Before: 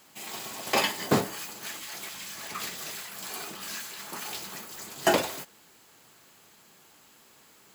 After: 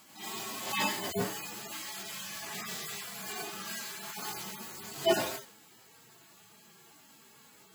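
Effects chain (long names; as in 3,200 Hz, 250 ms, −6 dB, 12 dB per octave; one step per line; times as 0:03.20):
harmonic-percussive split with one part muted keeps harmonic
level +3 dB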